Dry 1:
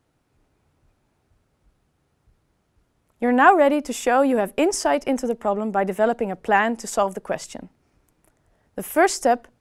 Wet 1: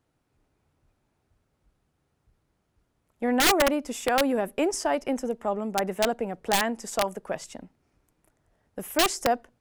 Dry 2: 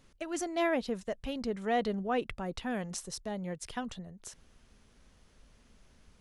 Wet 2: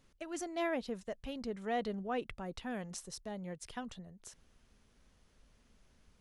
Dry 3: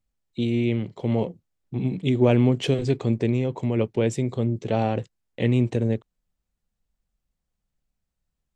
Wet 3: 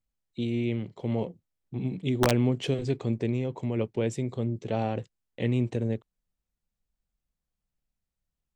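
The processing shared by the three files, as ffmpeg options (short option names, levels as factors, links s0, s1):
-af "aeval=exprs='(mod(2.66*val(0)+1,2)-1)/2.66':c=same,volume=0.531"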